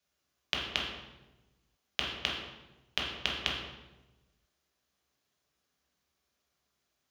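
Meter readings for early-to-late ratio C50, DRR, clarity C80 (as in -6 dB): 2.0 dB, -3.5 dB, 5.0 dB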